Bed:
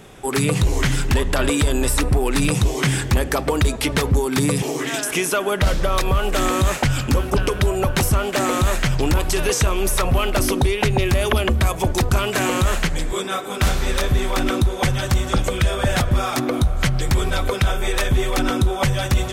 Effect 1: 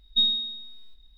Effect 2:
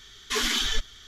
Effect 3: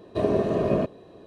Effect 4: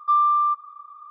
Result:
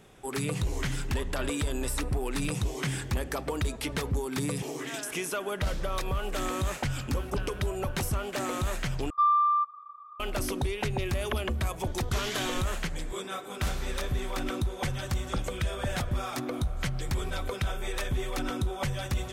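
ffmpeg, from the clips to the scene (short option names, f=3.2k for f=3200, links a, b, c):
-filter_complex "[0:a]volume=-12dB[a];[4:a]lowshelf=f=85:g=12[b];[a]asplit=2[c][d];[c]atrim=end=9.104[e];[b]atrim=end=1.1,asetpts=PTS-STARTPTS,volume=-4.5dB[f];[d]atrim=start=10.196[g];[2:a]atrim=end=1.07,asetpts=PTS-STARTPTS,volume=-10.5dB,afade=t=in:d=0.004:c=hsin,afade=t=out:st=1.066:d=0.004:c=hsin,adelay=11810[h];[e][f]acrossfade=d=0.004:c1=hsin:c2=hsin[i];[i][g]acrossfade=d=0.004:c1=hsin:c2=hsin[j];[j][h]amix=inputs=2:normalize=0"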